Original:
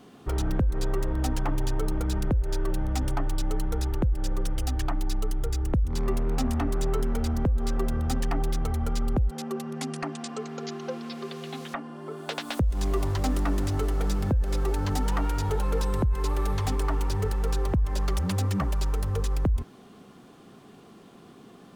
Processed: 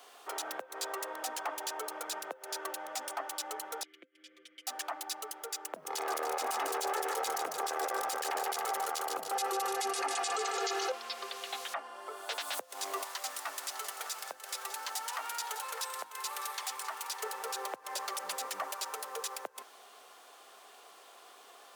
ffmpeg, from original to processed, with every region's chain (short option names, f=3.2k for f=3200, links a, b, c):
-filter_complex "[0:a]asettb=1/sr,asplit=3[a][b][c];[a]atrim=end=3.834[d];[b]atrim=start=3.83:end=4.67,asetpts=PTS-STARTPTS,afade=t=in:d=0.004:c=qsin,afade=t=out:st=0.836:d=0.004:c=qsin,asplit=3[e][f][g];[e]bandpass=f=270:t=q:w=8,volume=0dB[h];[f]bandpass=f=2.29k:t=q:w=8,volume=-6dB[i];[g]bandpass=f=3.01k:t=q:w=8,volume=-9dB[j];[h][i][j]amix=inputs=3:normalize=0,aecho=1:1:5.8:0.71,atrim=end_sample=37044[k];[c]atrim=start=4.666[l];[d][k]acrossfade=d=0.004:c1=hsin:c2=qsin[m];[m][l]acrossfade=d=0.004:c1=qsin:c2=hsin,asettb=1/sr,asplit=3[n][o][p];[n]atrim=end=5.764[q];[o]atrim=start=5.76:end=10.92,asetpts=PTS-STARTPTS,afade=t=in:d=0.004:c=qsin,afade=t=out:st=5.156:d=0.004:c=qsin,aecho=1:1:2.4:0.82,atrim=end_sample=227556,aeval=exprs='0.237*sin(PI/2*1.78*val(0)/0.237)':c=same,aecho=1:1:148|296|444|592|740:0.251|0.128|0.0653|0.0333|0.017,atrim=end_sample=227556[r];[p]atrim=start=10.916[s];[q][r]acrossfade=d=0.004:c1=hsin:c2=qsin[t];[t][s]acrossfade=d=0.004:c1=qsin:c2=hsin,asettb=1/sr,asplit=3[u][v][w];[u]atrim=end=13.034[x];[v]atrim=start=13.03:end=17.23,asetpts=PTS-STARTPTS,afade=t=in:d=0.004:c=qsin,afade=t=out:st=4.196:d=0.004:c=qsin,equalizer=f=330:w=0.48:g=-12.5,bandreject=f=50:t=h:w=6,bandreject=f=100:t=h:w=6,bandreject=f=150:t=h:w=6,bandreject=f=200:t=h:w=6,bandreject=f=250:t=h:w=6,bandreject=f=300:t=h:w=6,bandreject=f=350:t=h:w=6,aecho=1:1:605:0.178,atrim=end_sample=185220[y];[w]atrim=start=17.226[z];[x][y]acrossfade=d=0.004:c1=hsin:c2=qsin[aa];[aa][z]acrossfade=d=0.004:c1=qsin:c2=hsin,highpass=f=580:w=0.5412,highpass=f=580:w=1.3066,highshelf=f=5.7k:g=7.5,alimiter=level_in=2dB:limit=-24dB:level=0:latency=1:release=22,volume=-2dB,volume=1dB"